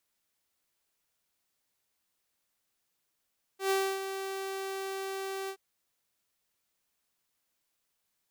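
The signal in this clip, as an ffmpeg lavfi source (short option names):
-f lavfi -i "aevalsrc='0.075*(2*mod(387*t,1)-1)':d=1.974:s=44100,afade=t=in:d=0.114,afade=t=out:st=0.114:d=0.286:silence=0.335,afade=t=out:st=1.9:d=0.074"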